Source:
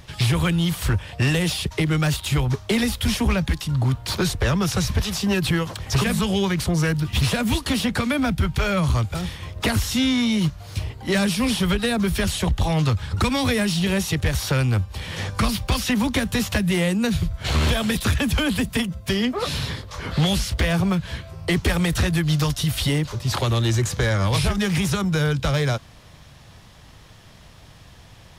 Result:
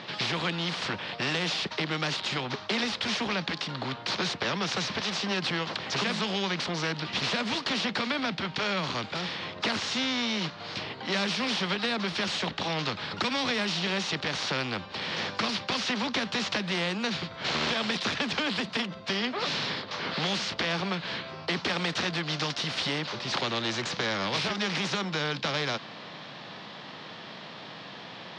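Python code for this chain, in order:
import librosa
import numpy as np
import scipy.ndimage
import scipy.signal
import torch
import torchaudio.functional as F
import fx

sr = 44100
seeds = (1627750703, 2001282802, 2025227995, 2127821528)

y = fx.hpss(x, sr, part='harmonic', gain_db=4)
y = scipy.signal.sosfilt(scipy.signal.ellip(3, 1.0, 50, [190.0, 4300.0], 'bandpass', fs=sr, output='sos'), y)
y = fx.spectral_comp(y, sr, ratio=2.0)
y = F.gain(torch.from_numpy(y), -7.0).numpy()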